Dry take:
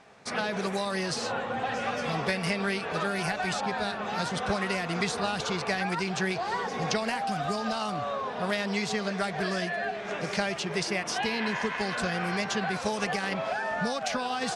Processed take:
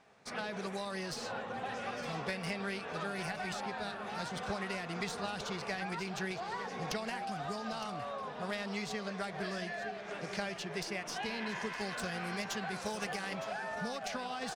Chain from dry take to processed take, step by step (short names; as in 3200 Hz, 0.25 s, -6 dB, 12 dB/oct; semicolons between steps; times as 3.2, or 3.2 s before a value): tracing distortion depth 0.023 ms; 11.49–13.65 high shelf 8600 Hz +10 dB; echo 0.912 s -12.5 dB; gain -9 dB